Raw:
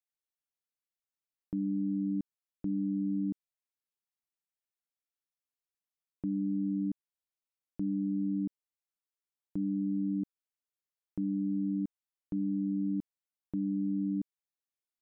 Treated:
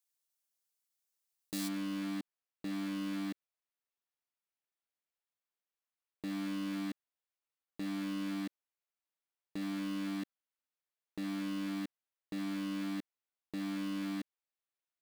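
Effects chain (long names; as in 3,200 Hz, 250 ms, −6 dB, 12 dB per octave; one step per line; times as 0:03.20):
one scale factor per block 3 bits
bass and treble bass −14 dB, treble +9 dB, from 0:01.67 treble −9 dB
level +1 dB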